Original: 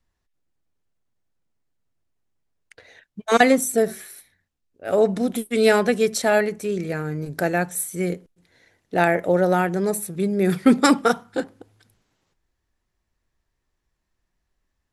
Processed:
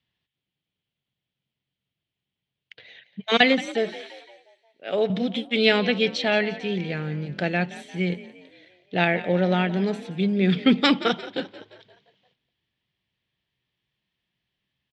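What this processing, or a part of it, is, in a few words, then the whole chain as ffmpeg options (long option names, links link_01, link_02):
frequency-shifting delay pedal into a guitar cabinet: -filter_complex "[0:a]asettb=1/sr,asplit=3[link_01][link_02][link_03];[link_01]atrim=end=3.694[link_04];[link_02]atrim=start=3.69:end=5.1,asetpts=PTS-STARTPTS,afade=type=in:duration=0.004:curve=qsin,afade=type=out:start_time=1.406:duration=0.004:curve=qsin,highpass=270[link_05];[link_03]atrim=start=5.096[link_06];[link_04][link_05]acrossfade=duration=0.004:curve1=hsin:curve2=qsin[link_07];[link_07][link_06]acrossfade=duration=0.004:curve1=qsin:curve2=hsin,asplit=6[link_08][link_09][link_10][link_11][link_12][link_13];[link_09]adelay=174,afreqshift=45,volume=-16.5dB[link_14];[link_10]adelay=348,afreqshift=90,volume=-22.2dB[link_15];[link_11]adelay=522,afreqshift=135,volume=-27.9dB[link_16];[link_12]adelay=696,afreqshift=180,volume=-33.5dB[link_17];[link_13]adelay=870,afreqshift=225,volume=-39.2dB[link_18];[link_08][link_14][link_15][link_16][link_17][link_18]amix=inputs=6:normalize=0,highpass=100,equalizer=frequency=130:width_type=q:width=4:gain=9,equalizer=frequency=190:width_type=q:width=4:gain=6,equalizer=frequency=3200:width_type=q:width=4:gain=9,lowpass=frequency=4200:width=0.5412,lowpass=frequency=4200:width=1.3066,highshelf=frequency=1800:width_type=q:width=1.5:gain=7,asettb=1/sr,asplit=3[link_19][link_20][link_21];[link_19]atrim=end=5.784[link_22];[link_20]atrim=start=5.78:end=6.75,asetpts=PTS-STARTPTS,afade=type=in:duration=0.004:curve=qsin,afade=type=out:start_time=0.966:duration=0.004:curve=qsin,lowpass=7600[link_23];[link_21]atrim=start=6.746[link_24];[link_22][link_23]acrossfade=duration=0.004:curve1=hsin:curve2=qsin[link_25];[link_25][link_24]acrossfade=duration=0.004:curve1=qsin:curve2=hsin,volume=-4.5dB"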